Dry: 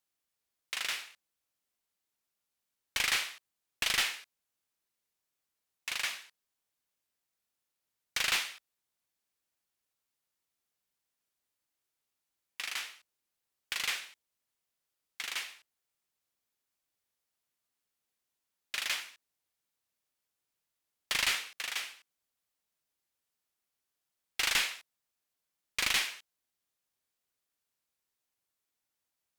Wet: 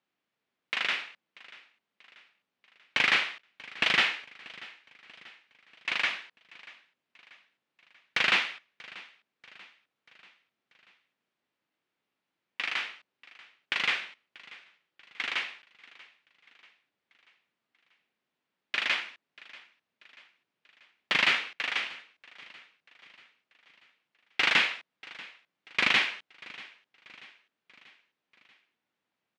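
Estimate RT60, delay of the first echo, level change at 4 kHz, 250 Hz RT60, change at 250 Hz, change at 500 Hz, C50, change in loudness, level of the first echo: no reverb, 637 ms, +3.5 dB, no reverb, +11.5 dB, +9.0 dB, no reverb, +5.0 dB, -21.0 dB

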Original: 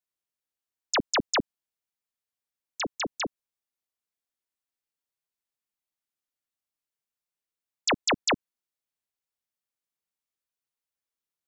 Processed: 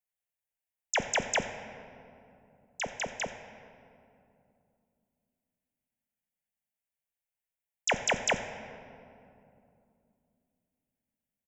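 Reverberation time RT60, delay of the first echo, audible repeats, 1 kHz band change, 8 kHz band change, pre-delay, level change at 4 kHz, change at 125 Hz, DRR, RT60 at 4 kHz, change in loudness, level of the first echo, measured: 2.7 s, 86 ms, 1, -3.0 dB, -1.0 dB, 5 ms, -6.5 dB, -1.5 dB, 7.5 dB, 1.4 s, -3.5 dB, -19.0 dB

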